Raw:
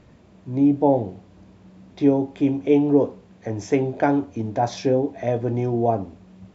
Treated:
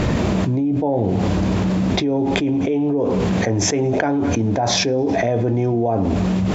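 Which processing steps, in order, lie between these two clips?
feedback echo behind a high-pass 105 ms, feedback 49%, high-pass 2.1 kHz, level -18.5 dB; level flattener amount 100%; trim -6 dB

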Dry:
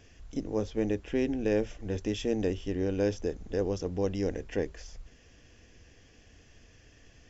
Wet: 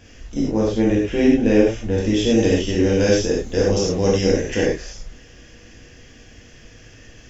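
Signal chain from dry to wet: 2.30–4.71 s: treble shelf 2.8 kHz +10 dB; gated-style reverb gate 130 ms flat, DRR -5.5 dB; trim +6.5 dB

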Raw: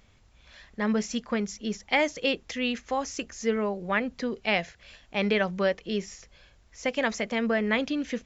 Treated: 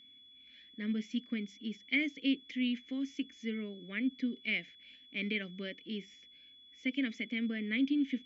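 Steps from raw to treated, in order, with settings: vowel filter i; whistle 3.4 kHz -59 dBFS; trim +3 dB

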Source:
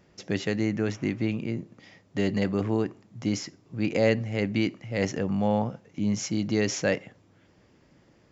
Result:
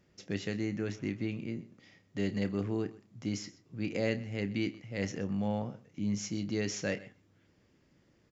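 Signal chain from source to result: peaking EQ 810 Hz -5 dB 1.3 oct; doubling 30 ms -11.5 dB; delay 127 ms -19 dB; trim -7 dB

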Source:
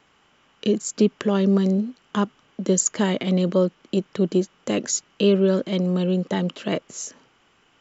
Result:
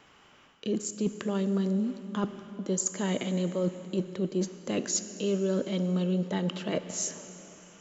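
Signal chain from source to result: reverse; compression 6:1, threshold -29 dBFS, peak gain reduction 15.5 dB; reverse; plate-style reverb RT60 3.5 s, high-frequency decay 0.8×, DRR 10.5 dB; trim +2 dB

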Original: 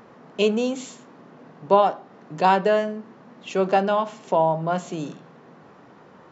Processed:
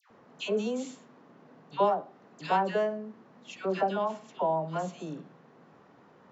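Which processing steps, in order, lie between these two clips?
phase dispersion lows, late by 106 ms, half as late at 1.3 kHz; trim -8.5 dB

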